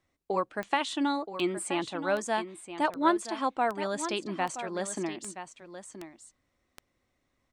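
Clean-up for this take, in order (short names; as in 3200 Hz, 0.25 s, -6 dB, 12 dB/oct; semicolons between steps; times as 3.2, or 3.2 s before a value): de-click; inverse comb 0.974 s -11 dB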